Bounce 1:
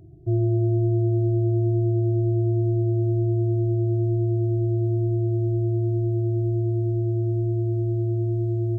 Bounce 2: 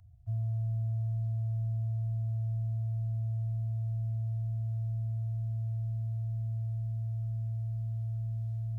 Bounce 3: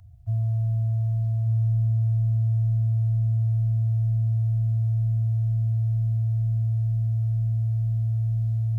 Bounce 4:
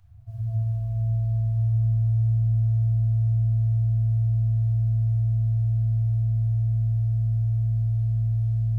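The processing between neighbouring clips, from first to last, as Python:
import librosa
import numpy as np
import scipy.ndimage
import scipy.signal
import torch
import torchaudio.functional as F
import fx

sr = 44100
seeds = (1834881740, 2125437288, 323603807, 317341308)

y1 = scipy.signal.sosfilt(scipy.signal.cheby2(4, 60, [210.0, 430.0], 'bandstop', fs=sr, output='sos'), x)
y1 = y1 * librosa.db_to_amplitude(-5.0)
y2 = y1 + 10.0 ** (-8.5 / 20.0) * np.pad(y1, (int(1184 * sr / 1000.0), 0))[:len(y1)]
y2 = y2 * librosa.db_to_amplitude(8.0)
y3 = fx.room_shoebox(y2, sr, seeds[0], volume_m3=150.0, walls='hard', distance_m=1.1)
y3 = y3 * librosa.db_to_amplitude(-6.5)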